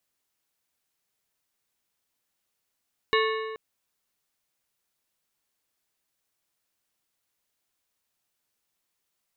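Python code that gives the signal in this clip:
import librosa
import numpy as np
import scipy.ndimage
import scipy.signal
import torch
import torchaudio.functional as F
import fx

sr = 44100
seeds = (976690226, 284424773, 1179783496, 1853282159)

y = fx.strike_metal(sr, length_s=0.43, level_db=-21.5, body='plate', hz=440.0, decay_s=1.79, tilt_db=2, modes=7)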